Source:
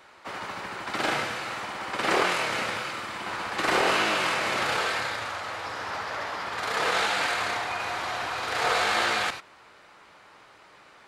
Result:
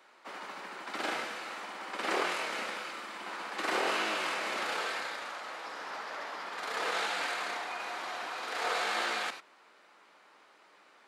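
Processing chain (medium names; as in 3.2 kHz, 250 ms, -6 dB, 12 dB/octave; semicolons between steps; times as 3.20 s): high-pass 210 Hz 24 dB/octave; trim -7.5 dB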